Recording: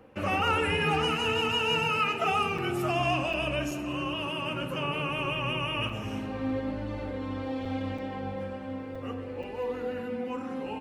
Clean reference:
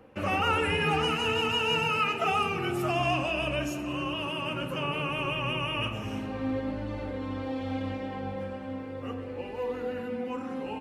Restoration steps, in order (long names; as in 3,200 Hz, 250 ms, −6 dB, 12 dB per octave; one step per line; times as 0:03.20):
clipped peaks rebuilt −16.5 dBFS
repair the gap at 0:02.58/0:03.33/0:03.71/0:05.89/0:07.65/0:07.98/0:08.95/0:09.43, 4.4 ms